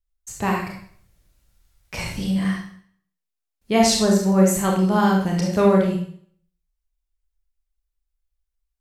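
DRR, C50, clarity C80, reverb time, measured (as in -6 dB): -1.5 dB, 3.0 dB, 7.0 dB, 0.55 s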